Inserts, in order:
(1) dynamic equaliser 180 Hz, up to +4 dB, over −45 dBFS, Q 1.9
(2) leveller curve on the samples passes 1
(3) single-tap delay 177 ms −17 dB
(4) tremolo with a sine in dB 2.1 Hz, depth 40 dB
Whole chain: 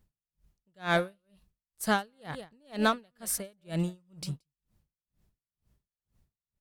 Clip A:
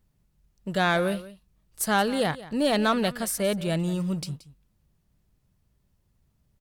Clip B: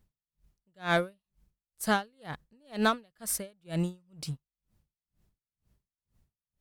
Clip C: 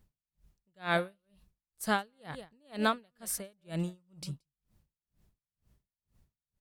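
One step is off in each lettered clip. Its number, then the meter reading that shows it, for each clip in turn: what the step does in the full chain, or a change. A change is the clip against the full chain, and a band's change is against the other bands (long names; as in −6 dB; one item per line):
4, change in momentary loudness spread −4 LU
3, change in momentary loudness spread +1 LU
2, change in crest factor +2.5 dB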